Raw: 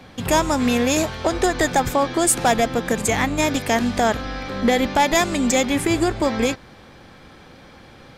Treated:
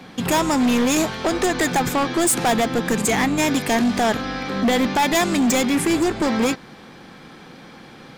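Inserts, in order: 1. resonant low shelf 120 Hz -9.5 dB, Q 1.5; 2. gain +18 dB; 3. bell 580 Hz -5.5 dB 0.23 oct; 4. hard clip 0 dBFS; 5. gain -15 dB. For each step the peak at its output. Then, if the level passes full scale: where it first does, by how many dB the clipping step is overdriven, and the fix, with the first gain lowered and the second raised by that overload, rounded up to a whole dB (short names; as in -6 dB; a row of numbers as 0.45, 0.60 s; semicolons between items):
-7.5, +10.5, +10.0, 0.0, -15.0 dBFS; step 2, 10.0 dB; step 2 +8 dB, step 5 -5 dB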